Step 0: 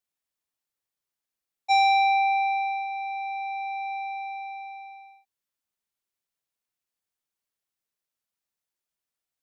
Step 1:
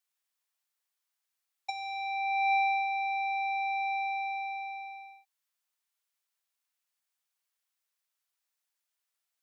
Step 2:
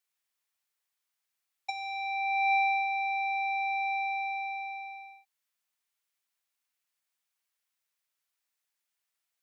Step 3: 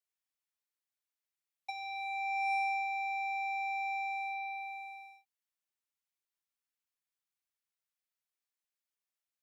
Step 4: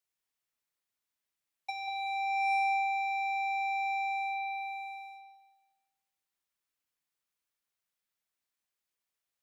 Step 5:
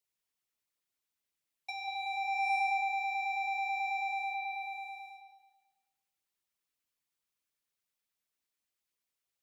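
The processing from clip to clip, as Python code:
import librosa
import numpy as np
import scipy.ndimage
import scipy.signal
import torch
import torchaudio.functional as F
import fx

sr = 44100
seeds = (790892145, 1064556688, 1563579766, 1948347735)

y1 = scipy.signal.sosfilt(scipy.signal.butter(2, 810.0, 'highpass', fs=sr, output='sos'), x)
y1 = fx.over_compress(y1, sr, threshold_db=-28.0, ratio=-0.5)
y2 = fx.peak_eq(y1, sr, hz=2200.0, db=2.5, octaves=0.77)
y3 = fx.leveller(y2, sr, passes=1)
y3 = F.gain(torch.from_numpy(y3), -8.0).numpy()
y4 = fx.echo_wet_lowpass(y3, sr, ms=189, feedback_pct=32, hz=3500.0, wet_db=-4.0)
y4 = F.gain(torch.from_numpy(y4), 3.0).numpy()
y5 = fx.filter_lfo_notch(y4, sr, shape='sine', hz=9.2, low_hz=640.0, high_hz=1800.0, q=2.2)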